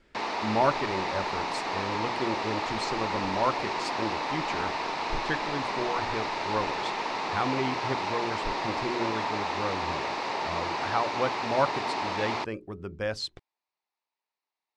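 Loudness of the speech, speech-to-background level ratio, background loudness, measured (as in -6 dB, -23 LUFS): -33.5 LUFS, -2.5 dB, -31.0 LUFS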